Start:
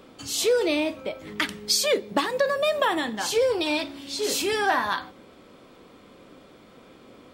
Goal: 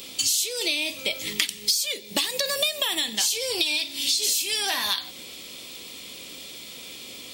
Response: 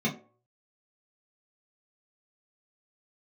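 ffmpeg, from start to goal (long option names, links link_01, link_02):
-af "highshelf=frequency=11000:gain=5.5,aexciter=amount=7.5:drive=7.4:freq=2200,acompressor=threshold=-21dB:ratio=20"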